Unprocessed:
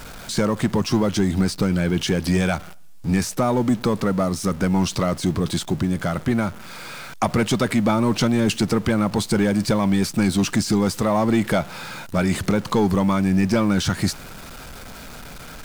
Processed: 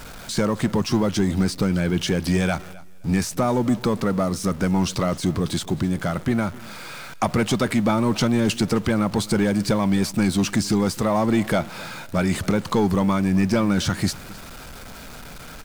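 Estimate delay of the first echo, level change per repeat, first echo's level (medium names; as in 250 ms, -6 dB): 261 ms, -14.0 dB, -21.0 dB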